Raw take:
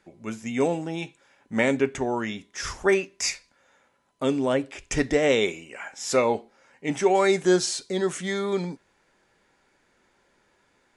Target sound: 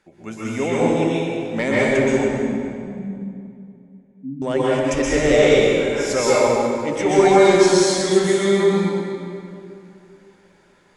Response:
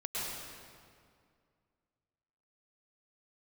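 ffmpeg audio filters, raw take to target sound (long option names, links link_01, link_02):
-filter_complex "[0:a]asoftclip=type=tanh:threshold=-11.5dB,asettb=1/sr,asplit=3[link_01][link_02][link_03];[link_01]atrim=end=2.054[link_04];[link_02]atrim=start=2.05:end=4.42,asetpts=PTS-STARTPTS,afade=type=in:duration=0.004:curve=qsin,afade=type=out:start_time=2.366:duration=0.004:curve=qsin,asuperpass=centerf=190:order=20:qfactor=1.3[link_05];[link_03]atrim=start=4.416[link_06];[link_04][link_05]acrossfade=duration=0.004:curve1=hsin:curve2=qsin[link_07];[link_07][link_06]acrossfade=duration=0.004:curve1=qsin:curve2=hsin[link_08];[1:a]atrim=start_sample=2205,asetrate=37485,aresample=44100[link_09];[link_08][link_09]afir=irnorm=-1:irlink=0,volume=3dB"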